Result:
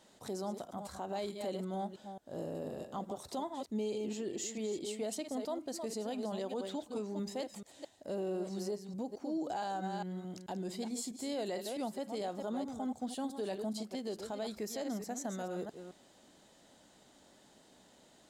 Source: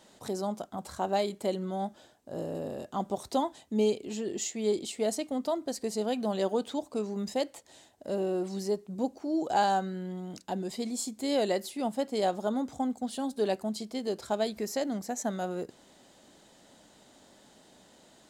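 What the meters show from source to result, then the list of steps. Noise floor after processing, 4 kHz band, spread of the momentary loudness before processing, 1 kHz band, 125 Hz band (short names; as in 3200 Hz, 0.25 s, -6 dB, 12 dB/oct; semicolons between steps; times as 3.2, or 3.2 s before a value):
-63 dBFS, -7.0 dB, 8 LU, -9.0 dB, -5.5 dB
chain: reverse delay 0.218 s, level -9 dB; limiter -24.5 dBFS, peak gain reduction 9.5 dB; gain -5 dB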